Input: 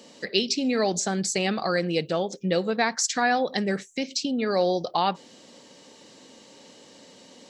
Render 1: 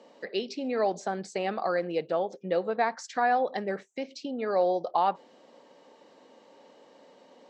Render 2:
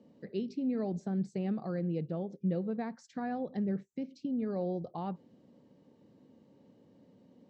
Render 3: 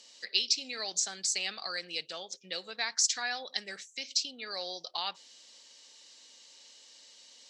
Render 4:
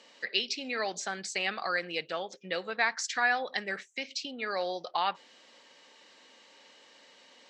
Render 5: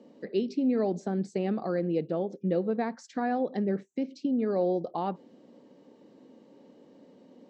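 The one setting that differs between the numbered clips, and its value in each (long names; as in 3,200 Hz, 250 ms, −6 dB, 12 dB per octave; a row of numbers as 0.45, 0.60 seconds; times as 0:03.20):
resonant band-pass, frequency: 740, 110, 5,100, 1,900, 280 Hertz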